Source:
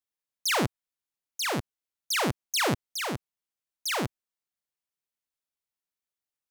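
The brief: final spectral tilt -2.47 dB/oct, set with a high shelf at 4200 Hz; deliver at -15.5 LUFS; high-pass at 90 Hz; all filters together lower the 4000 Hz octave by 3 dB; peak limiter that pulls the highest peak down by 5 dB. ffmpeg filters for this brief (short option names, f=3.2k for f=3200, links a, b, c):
-af "highpass=90,equalizer=f=4k:t=o:g=-9,highshelf=f=4.2k:g=8,volume=15dB,alimiter=limit=-2dB:level=0:latency=1"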